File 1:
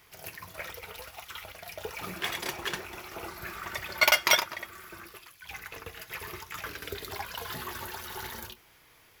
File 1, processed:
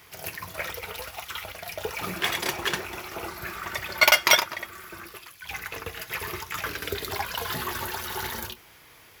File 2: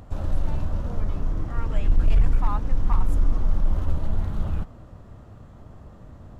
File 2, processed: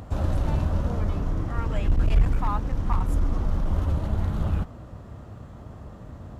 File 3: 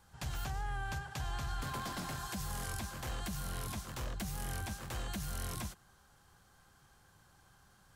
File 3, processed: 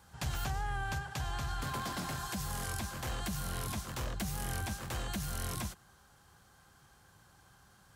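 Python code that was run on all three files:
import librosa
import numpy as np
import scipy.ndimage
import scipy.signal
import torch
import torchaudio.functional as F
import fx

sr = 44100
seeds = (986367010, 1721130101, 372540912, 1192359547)

y = scipy.signal.sosfilt(scipy.signal.butter(2, 41.0, 'highpass', fs=sr, output='sos'), x)
y = fx.rider(y, sr, range_db=4, speed_s=2.0)
y = y * 10.0 ** (3.0 / 20.0)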